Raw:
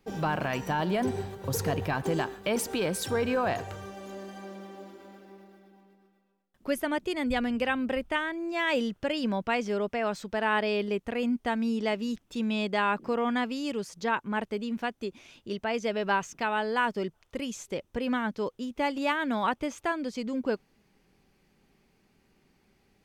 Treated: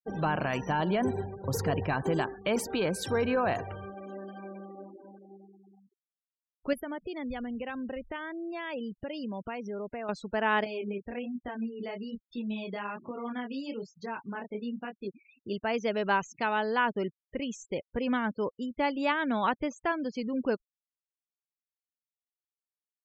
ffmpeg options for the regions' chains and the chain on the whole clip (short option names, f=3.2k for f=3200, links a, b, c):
-filter_complex "[0:a]asettb=1/sr,asplit=3[a][b][c];[a]atrim=end=6.734[d];[b]atrim=start=6.73:end=10.09,asetpts=PTS-STARTPTS,afade=t=in:d=0.004:c=qsin,afade=t=out:st=3.356:d=0.004:c=qsin,equalizer=f=2.4k:w=0.85:g=-3,acompressor=threshold=-36dB:ratio=2.5:attack=3.2:release=140:knee=1:detection=peak[e];[c]atrim=start=10.086[f];[d][e]acrossfade=d=0.004:c1=hsin:c2=qsin[g];[g][f]acrossfade=d=0.004:c1=qsin:c2=hsin,asettb=1/sr,asplit=3[h][i][j];[h]atrim=end=10.644[k];[i]atrim=start=10.64:end=15.08,asetpts=PTS-STARTPTS,afade=t=in:d=0.004:c=qsin,afade=t=out:st=4.436:d=0.004:c=qsin,acompressor=threshold=-28dB:ratio=8:attack=3.2:release=140:knee=1:detection=peak,flanger=delay=20:depth=6:speed=1.2[l];[j]atrim=start=15.076[m];[k][l]acrossfade=d=0.004:c1=hsin:c2=qsin[n];[n][m]acrossfade=d=0.004:c1=qsin:c2=hsin,afftfilt=real='re*gte(hypot(re,im),0.00891)':imag='im*gte(hypot(re,im),0.00891)':win_size=1024:overlap=0.75,highshelf=f=7.4k:g=-7.5"